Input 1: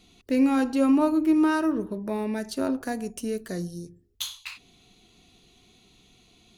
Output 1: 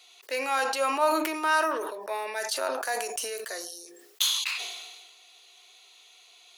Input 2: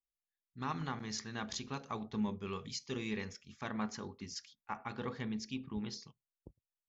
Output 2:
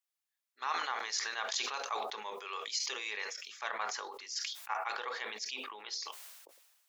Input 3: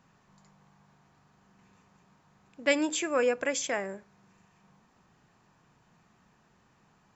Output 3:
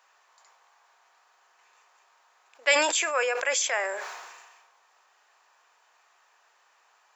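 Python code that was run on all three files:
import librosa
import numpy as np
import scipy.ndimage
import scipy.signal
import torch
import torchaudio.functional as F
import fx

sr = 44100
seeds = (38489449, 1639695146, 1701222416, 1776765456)

y = scipy.signal.sosfilt(scipy.signal.bessel(6, 840.0, 'highpass', norm='mag', fs=sr, output='sos'), x)
y = fx.sustainer(y, sr, db_per_s=39.0)
y = y * 10.0 ** (6.0 / 20.0)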